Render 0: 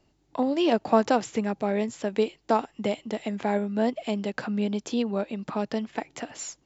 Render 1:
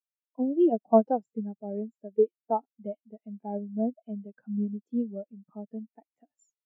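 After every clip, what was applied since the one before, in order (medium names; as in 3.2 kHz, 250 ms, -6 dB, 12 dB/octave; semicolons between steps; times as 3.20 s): spectral contrast expander 2.5:1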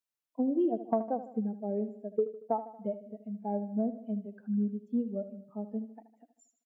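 compression 6:1, threshold -28 dBFS, peak gain reduction 14.5 dB; on a send: feedback delay 77 ms, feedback 52%, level -13 dB; on the sum: trim +2 dB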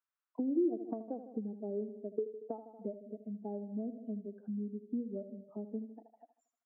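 compression 4:1, threshold -35 dBFS, peak gain reduction 11 dB; auto-wah 330–1300 Hz, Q 2.7, down, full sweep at -41.5 dBFS; trim +7 dB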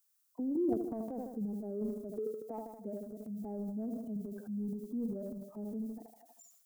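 tilt EQ +2.5 dB/octave; transient shaper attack -4 dB, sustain +10 dB; tone controls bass +10 dB, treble +13 dB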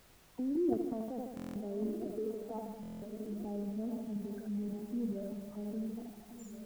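backward echo that repeats 689 ms, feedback 60%, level -11 dB; added noise pink -62 dBFS; buffer glitch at 1.35/2.81 s, samples 1024, times 8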